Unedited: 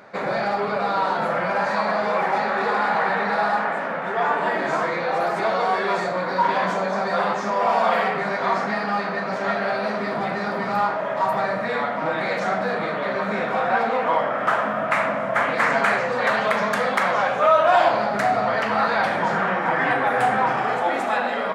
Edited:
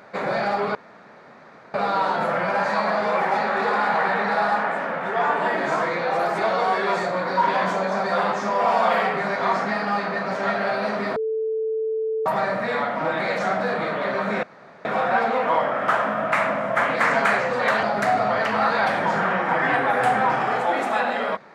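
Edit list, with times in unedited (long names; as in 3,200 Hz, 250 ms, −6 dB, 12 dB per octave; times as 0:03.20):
0:00.75: splice in room tone 0.99 s
0:10.17–0:11.27: beep over 441 Hz −21.5 dBFS
0:13.44: splice in room tone 0.42 s
0:16.42–0:18.00: remove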